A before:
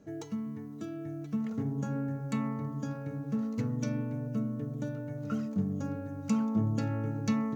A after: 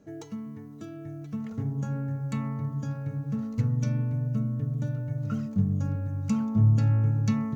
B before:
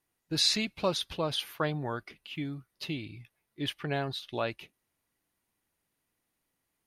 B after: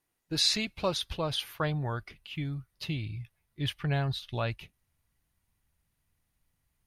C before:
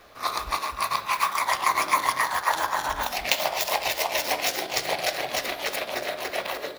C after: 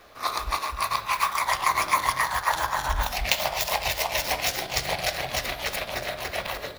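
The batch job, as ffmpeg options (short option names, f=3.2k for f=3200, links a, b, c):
-af "asubboost=boost=9:cutoff=110"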